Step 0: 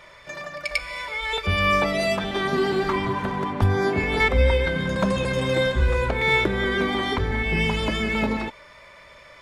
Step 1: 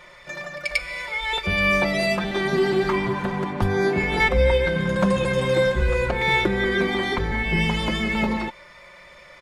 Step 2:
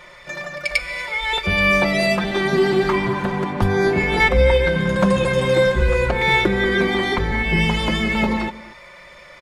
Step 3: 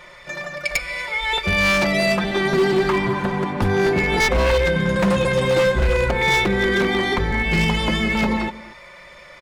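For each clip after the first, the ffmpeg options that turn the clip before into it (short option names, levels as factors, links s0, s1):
-af "aecho=1:1:5.6:0.51"
-filter_complex "[0:a]asplit=2[s0][s1];[s1]adelay=239.1,volume=0.126,highshelf=f=4000:g=-5.38[s2];[s0][s2]amix=inputs=2:normalize=0,volume=1.5"
-af "aeval=exprs='0.266*(abs(mod(val(0)/0.266+3,4)-2)-1)':c=same"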